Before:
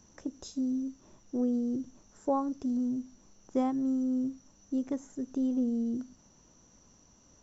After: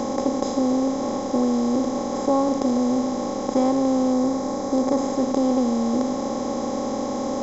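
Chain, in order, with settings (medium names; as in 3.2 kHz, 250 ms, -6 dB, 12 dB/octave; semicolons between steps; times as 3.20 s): spectral levelling over time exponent 0.2; 4.12–4.99 s: peaking EQ 2.9 kHz -6 dB 0.45 oct; trim +5 dB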